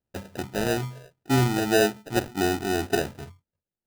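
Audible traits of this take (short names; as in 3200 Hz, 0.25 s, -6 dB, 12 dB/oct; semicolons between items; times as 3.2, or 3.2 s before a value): phasing stages 8, 1.8 Hz, lowest notch 780–1700 Hz; aliases and images of a low sample rate 1100 Hz, jitter 0%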